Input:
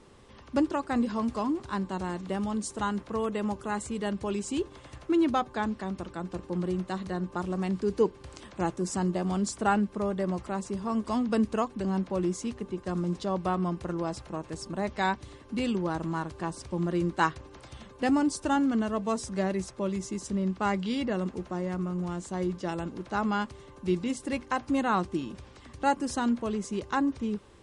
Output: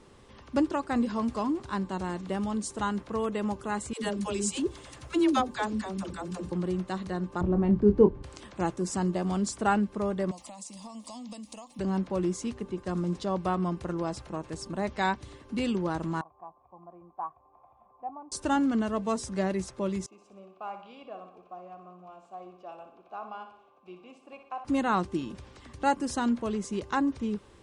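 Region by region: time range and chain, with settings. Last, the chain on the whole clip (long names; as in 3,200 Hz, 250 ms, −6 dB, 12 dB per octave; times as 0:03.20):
0:03.93–0:06.52: high-shelf EQ 4,400 Hz +11 dB + all-pass dispersion lows, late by 105 ms, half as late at 360 Hz
0:07.41–0:08.23: low-pass filter 1,900 Hz 6 dB per octave + spectral tilt −3.5 dB per octave + double-tracking delay 24 ms −7.5 dB
0:10.31–0:11.79: spectral tilt +3.5 dB per octave + downward compressor 10 to 1, threshold −37 dBFS + phaser with its sweep stopped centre 400 Hz, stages 6
0:16.21–0:18.32: upward compression, threshold −37 dBFS + formant resonators in series a
0:20.06–0:24.65: formant filter a + repeating echo 61 ms, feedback 53%, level −9 dB
whole clip: no processing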